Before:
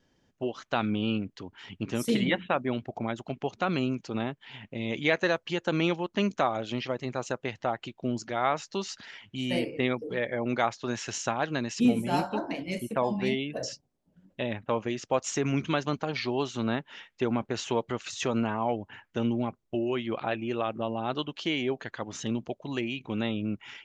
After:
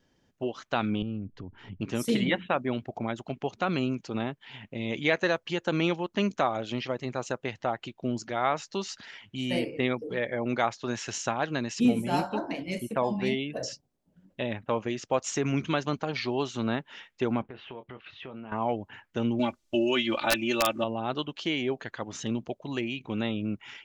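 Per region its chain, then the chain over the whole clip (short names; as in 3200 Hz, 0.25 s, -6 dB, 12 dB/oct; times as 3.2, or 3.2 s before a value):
1.02–1.81 tilt -4.5 dB/oct + compressor 2:1, threshold -43 dBFS
17.42–18.52 steep low-pass 3300 Hz + doubler 23 ms -11 dB + compressor 2.5:1, threshold -45 dBFS
19.39–20.84 bell 5700 Hz +14 dB 2.7 oct + comb 3.4 ms, depth 78% + wrapped overs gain 14 dB
whole clip: dry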